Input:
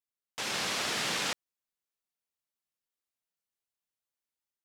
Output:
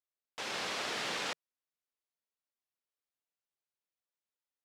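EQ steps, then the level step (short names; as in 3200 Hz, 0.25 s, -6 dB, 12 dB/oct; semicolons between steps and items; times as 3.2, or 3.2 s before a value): EQ curve 160 Hz 0 dB, 460 Hz +7 dB, 4100 Hz +3 dB, 15000 Hz -5 dB; -8.5 dB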